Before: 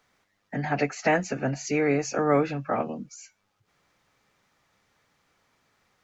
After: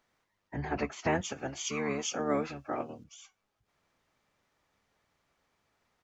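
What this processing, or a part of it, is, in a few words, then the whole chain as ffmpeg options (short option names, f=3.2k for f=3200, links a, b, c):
octave pedal: -filter_complex "[0:a]asettb=1/sr,asplit=3[a][b][c];[a]atrim=end=1.214[d];[b]atrim=start=1.21:end=3.04,asetpts=PTS-STARTPTS,afade=t=in:d=0.004:c=qsin,afade=t=out:st=1.826:d=0.004:c=qsin,bass=f=250:g=-15,treble=f=4k:g=9[e];[c]atrim=start=3.036[f];[d][e]acrossfade=d=0.004:c1=hsin:c2=qsin[g];[g][f]acrossfade=d=0.004:c1=qsin:c2=hsin,asplit=2[h][i];[i]asetrate=22050,aresample=44100,atempo=2,volume=-3dB[j];[h][j]amix=inputs=2:normalize=0,volume=-8.5dB"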